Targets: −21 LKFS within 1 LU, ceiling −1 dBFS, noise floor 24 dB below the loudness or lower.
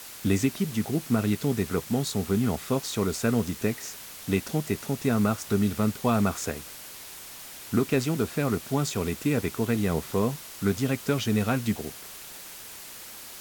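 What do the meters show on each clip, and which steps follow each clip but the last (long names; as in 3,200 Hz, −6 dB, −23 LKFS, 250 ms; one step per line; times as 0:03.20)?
background noise floor −43 dBFS; target noise floor −52 dBFS; integrated loudness −27.5 LKFS; sample peak −10.0 dBFS; target loudness −21.0 LKFS
→ noise reduction from a noise print 9 dB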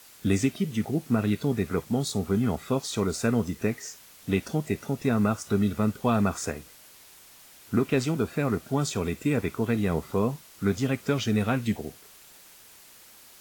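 background noise floor −52 dBFS; integrated loudness −27.5 LKFS; sample peak −10.0 dBFS; target loudness −21.0 LKFS
→ level +6.5 dB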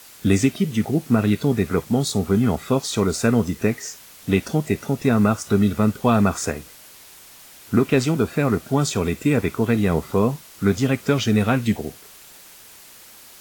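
integrated loudness −21.0 LKFS; sample peak −3.5 dBFS; background noise floor −46 dBFS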